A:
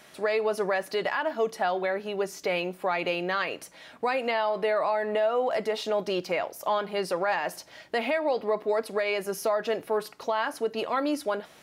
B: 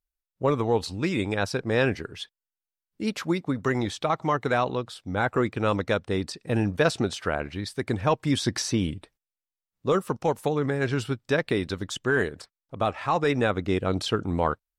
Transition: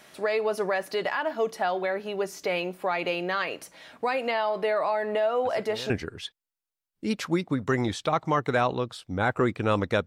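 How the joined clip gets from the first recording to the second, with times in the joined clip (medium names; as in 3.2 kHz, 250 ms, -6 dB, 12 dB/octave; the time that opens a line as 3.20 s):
A
5.45 s: add B from 1.42 s 0.45 s -18 dB
5.90 s: go over to B from 1.87 s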